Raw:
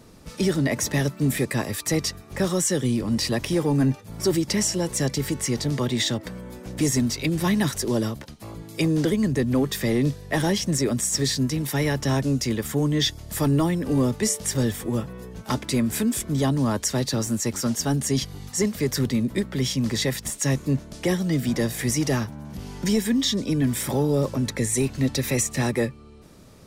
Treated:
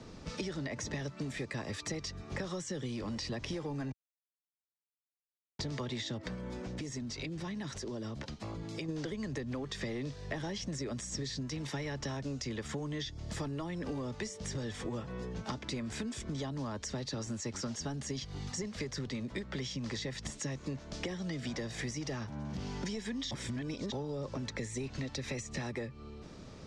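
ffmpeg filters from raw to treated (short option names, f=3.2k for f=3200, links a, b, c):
-filter_complex "[0:a]asplit=3[a][b][c];[a]afade=t=out:st=6.34:d=0.02[d];[b]acompressor=threshold=-36dB:ratio=6:attack=3.2:release=140:knee=1:detection=peak,afade=t=in:st=6.34:d=0.02,afade=t=out:st=8.88:d=0.02[e];[c]afade=t=in:st=8.88:d=0.02[f];[d][e][f]amix=inputs=3:normalize=0,asplit=5[g][h][i][j][k];[g]atrim=end=3.92,asetpts=PTS-STARTPTS,afade=t=out:st=3.916:d=0.004:c=hsin[l];[h]atrim=start=3.92:end=5.59,asetpts=PTS-STARTPTS,volume=0[m];[i]atrim=start=5.59:end=23.312,asetpts=PTS-STARTPTS,afade=t=in:d=0.004:c=hsin[n];[j]atrim=start=23.308:end=23.922,asetpts=PTS-STARTPTS,areverse[o];[k]atrim=start=23.918[p];[l][m][n]concat=n=3:v=0:a=1[q];[q][o]acrossfade=d=0.004:c1=hsin:c2=hsin[r];[r][p]acrossfade=d=0.004:c1=hsin:c2=hsin,acrossover=split=98|460[s][t][u];[s]acompressor=threshold=-42dB:ratio=4[v];[t]acompressor=threshold=-35dB:ratio=4[w];[u]acompressor=threshold=-34dB:ratio=4[x];[v][w][x]amix=inputs=3:normalize=0,lowpass=f=6.5k:w=0.5412,lowpass=f=6.5k:w=1.3066,acompressor=threshold=-35dB:ratio=6"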